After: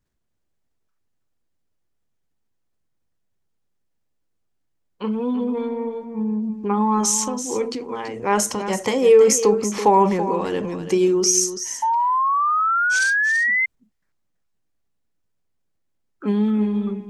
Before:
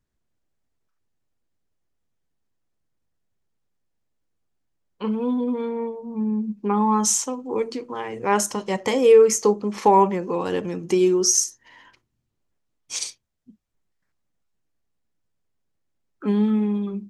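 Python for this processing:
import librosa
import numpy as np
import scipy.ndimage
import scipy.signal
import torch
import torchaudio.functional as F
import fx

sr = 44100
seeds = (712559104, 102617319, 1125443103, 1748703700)

y = fx.transient(x, sr, attack_db=1, sustain_db=6)
y = y + 10.0 ** (-11.0 / 20.0) * np.pad(y, (int(332 * sr / 1000.0), 0))[:len(y)]
y = fx.spec_paint(y, sr, seeds[0], shape='rise', start_s=11.82, length_s=1.84, low_hz=880.0, high_hz=2100.0, level_db=-19.0)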